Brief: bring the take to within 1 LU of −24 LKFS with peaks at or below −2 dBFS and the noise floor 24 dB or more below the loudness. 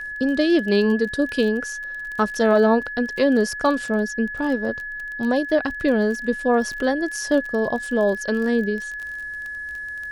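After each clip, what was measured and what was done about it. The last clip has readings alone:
crackle rate 24 per second; interfering tone 1,700 Hz; level of the tone −29 dBFS; integrated loudness −22.0 LKFS; sample peak −5.0 dBFS; target loudness −24.0 LKFS
→ click removal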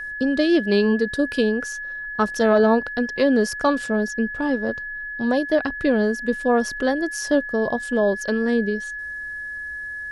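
crackle rate 0 per second; interfering tone 1,700 Hz; level of the tone −29 dBFS
→ notch filter 1,700 Hz, Q 30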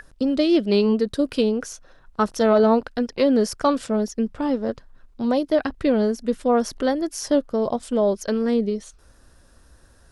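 interfering tone none found; integrated loudness −22.0 LKFS; sample peak −5.5 dBFS; target loudness −24.0 LKFS
→ level −2 dB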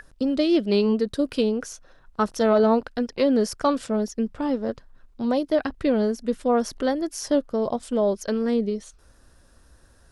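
integrated loudness −24.0 LKFS; sample peak −7.5 dBFS; background noise floor −55 dBFS

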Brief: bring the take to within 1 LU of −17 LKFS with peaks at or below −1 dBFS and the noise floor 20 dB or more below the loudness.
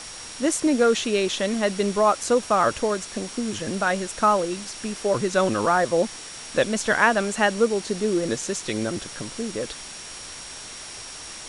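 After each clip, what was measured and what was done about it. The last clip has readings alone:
interfering tone 5,600 Hz; level of the tone −42 dBFS; background noise floor −39 dBFS; target noise floor −44 dBFS; integrated loudness −23.5 LKFS; sample peak −3.0 dBFS; target loudness −17.0 LKFS
→ notch filter 5,600 Hz, Q 30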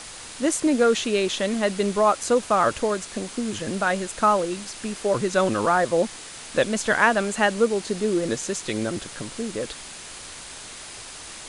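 interfering tone none found; background noise floor −40 dBFS; target noise floor −44 dBFS
→ broadband denoise 6 dB, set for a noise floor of −40 dBFS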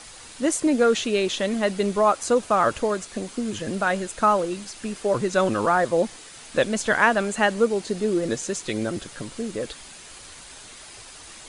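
background noise floor −44 dBFS; integrated loudness −23.5 LKFS; sample peak −3.5 dBFS; target loudness −17.0 LKFS
→ level +6.5 dB
brickwall limiter −1 dBFS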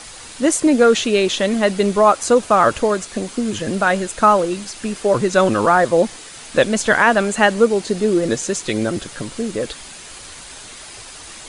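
integrated loudness −17.0 LKFS; sample peak −1.0 dBFS; background noise floor −37 dBFS

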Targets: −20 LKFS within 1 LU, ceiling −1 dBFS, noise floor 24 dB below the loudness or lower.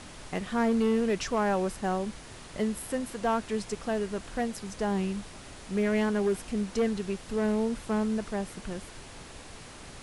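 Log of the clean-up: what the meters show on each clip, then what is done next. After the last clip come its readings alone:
share of clipped samples 1.0%; peaks flattened at −20.5 dBFS; background noise floor −47 dBFS; target noise floor −54 dBFS; integrated loudness −30.0 LKFS; sample peak −20.5 dBFS; target loudness −20.0 LKFS
→ clipped peaks rebuilt −20.5 dBFS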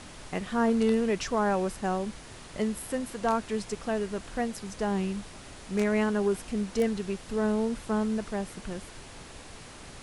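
share of clipped samples 0.0%; background noise floor −47 dBFS; target noise floor −54 dBFS
→ noise reduction from a noise print 7 dB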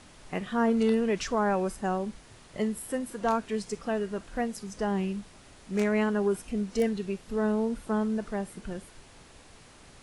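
background noise floor −54 dBFS; integrated loudness −30.0 LKFS; sample peak −12.5 dBFS; target loudness −20.0 LKFS
→ level +10 dB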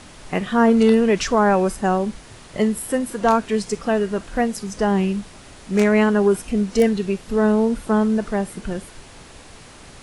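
integrated loudness −20.0 LKFS; sample peak −2.5 dBFS; background noise floor −44 dBFS

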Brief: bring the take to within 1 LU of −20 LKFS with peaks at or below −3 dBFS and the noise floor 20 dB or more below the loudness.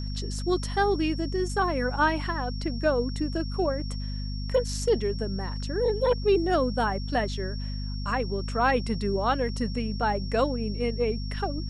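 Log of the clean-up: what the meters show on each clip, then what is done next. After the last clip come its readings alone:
mains hum 50 Hz; hum harmonics up to 250 Hz; level of the hum −30 dBFS; interfering tone 5,500 Hz; level of the tone −42 dBFS; integrated loudness −27.5 LKFS; sample peak −11.0 dBFS; target loudness −20.0 LKFS
→ mains-hum notches 50/100/150/200/250 Hz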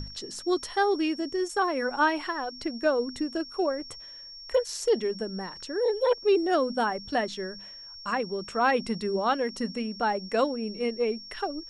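mains hum none found; interfering tone 5,500 Hz; level of the tone −42 dBFS
→ notch filter 5,500 Hz, Q 30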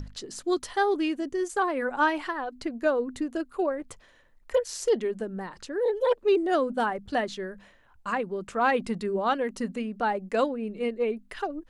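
interfering tone none found; integrated loudness −28.0 LKFS; sample peak −12.0 dBFS; target loudness −20.0 LKFS
→ level +8 dB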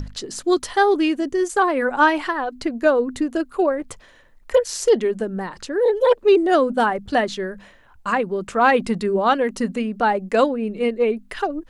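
integrated loudness −20.0 LKFS; sample peak −4.0 dBFS; background noise floor −50 dBFS

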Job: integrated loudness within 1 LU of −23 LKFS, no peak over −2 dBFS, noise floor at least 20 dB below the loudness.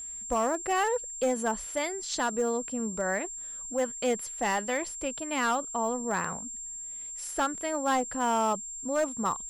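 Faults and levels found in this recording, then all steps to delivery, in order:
share of clipped samples 0.9%; peaks flattened at −21.0 dBFS; interfering tone 7,400 Hz; level of the tone −37 dBFS; integrated loudness −30.0 LKFS; sample peak −21.0 dBFS; target loudness −23.0 LKFS
→ clipped peaks rebuilt −21 dBFS
notch filter 7,400 Hz, Q 30
level +7 dB

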